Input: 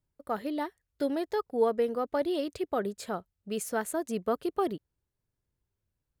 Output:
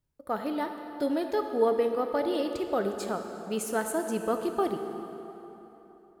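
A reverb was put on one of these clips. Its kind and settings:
dense smooth reverb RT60 3.5 s, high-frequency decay 0.7×, DRR 5 dB
level +1 dB

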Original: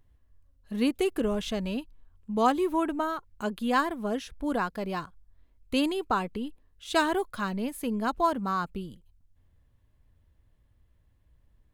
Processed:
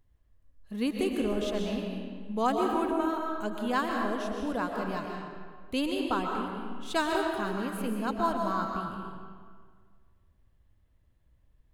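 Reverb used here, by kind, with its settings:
comb and all-pass reverb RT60 1.8 s, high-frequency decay 0.7×, pre-delay 90 ms, DRR 1 dB
level −4 dB

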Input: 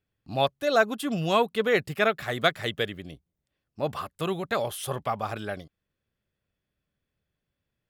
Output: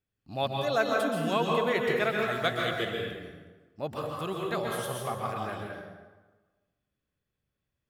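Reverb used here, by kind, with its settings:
dense smooth reverb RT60 1.3 s, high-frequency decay 0.65×, pre-delay 115 ms, DRR −1 dB
level −6 dB

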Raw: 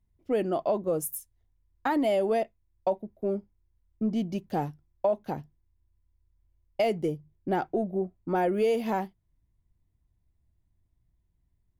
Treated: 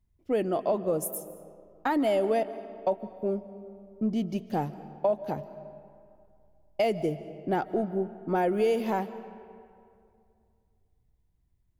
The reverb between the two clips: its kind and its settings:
comb and all-pass reverb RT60 2.4 s, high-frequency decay 0.6×, pre-delay 110 ms, DRR 14 dB

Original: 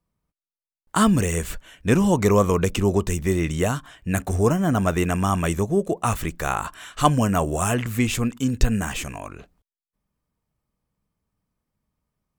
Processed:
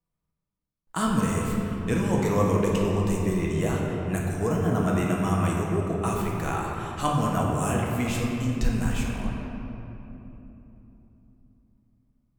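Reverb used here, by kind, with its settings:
rectangular room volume 180 cubic metres, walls hard, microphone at 0.63 metres
level −9 dB

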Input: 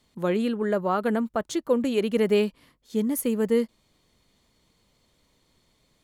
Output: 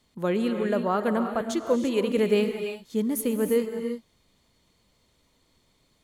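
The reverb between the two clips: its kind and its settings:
reverb whose tail is shaped and stops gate 370 ms rising, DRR 6 dB
level −1 dB

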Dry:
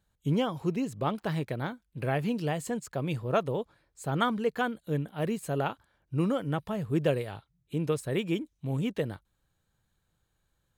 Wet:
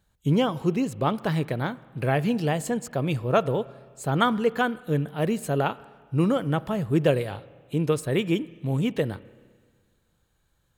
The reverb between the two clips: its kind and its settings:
spring reverb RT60 1.7 s, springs 31/42 ms, chirp 70 ms, DRR 18.5 dB
level +5.5 dB

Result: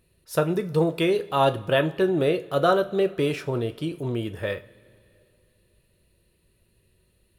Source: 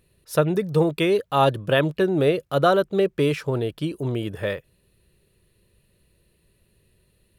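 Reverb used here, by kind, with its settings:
coupled-rooms reverb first 0.3 s, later 2.7 s, from −21 dB, DRR 7.5 dB
level −2.5 dB

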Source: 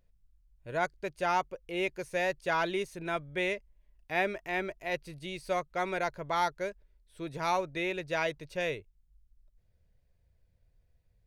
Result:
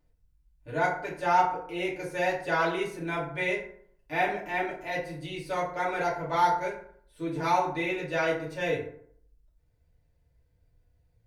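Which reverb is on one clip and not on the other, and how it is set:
feedback delay network reverb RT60 0.62 s, low-frequency decay 1.05×, high-frequency decay 0.5×, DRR −7.5 dB
level −5 dB

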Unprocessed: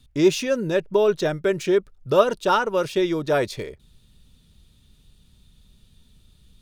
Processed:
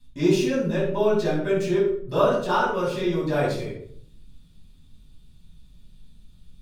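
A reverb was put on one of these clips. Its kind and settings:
rectangular room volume 840 cubic metres, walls furnished, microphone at 9.1 metres
level −13 dB

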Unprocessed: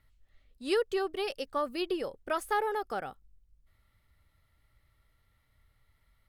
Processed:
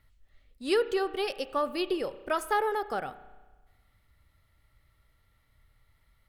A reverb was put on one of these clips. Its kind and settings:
spring reverb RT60 1.3 s, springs 32 ms, chirp 65 ms, DRR 13.5 dB
level +2.5 dB

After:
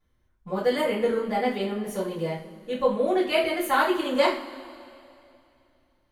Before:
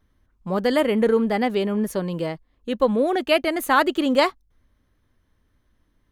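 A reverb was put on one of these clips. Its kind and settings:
coupled-rooms reverb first 0.37 s, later 2.7 s, from −20 dB, DRR −8 dB
level −12 dB

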